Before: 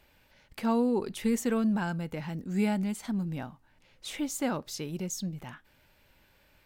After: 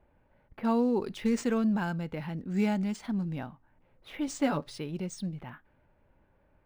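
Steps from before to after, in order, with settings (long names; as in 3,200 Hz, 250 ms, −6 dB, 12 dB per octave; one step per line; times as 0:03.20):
low-pass that shuts in the quiet parts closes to 960 Hz, open at −27.5 dBFS
0:04.27–0:04.78: comb filter 7 ms, depth 78%
linearly interpolated sample-rate reduction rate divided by 3×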